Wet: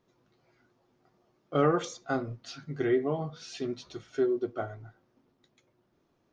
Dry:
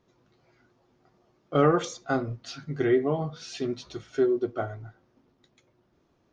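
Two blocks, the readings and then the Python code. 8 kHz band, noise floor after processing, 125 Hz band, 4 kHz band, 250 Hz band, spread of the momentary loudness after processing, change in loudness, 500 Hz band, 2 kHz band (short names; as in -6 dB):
n/a, -73 dBFS, -4.5 dB, -3.5 dB, -3.5 dB, 14 LU, -3.5 dB, -3.5 dB, -3.5 dB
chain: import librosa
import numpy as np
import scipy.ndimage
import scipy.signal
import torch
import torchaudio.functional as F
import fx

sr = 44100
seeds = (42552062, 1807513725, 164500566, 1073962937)

y = fx.peak_eq(x, sr, hz=61.0, db=-5.5, octaves=1.2)
y = y * 10.0 ** (-3.5 / 20.0)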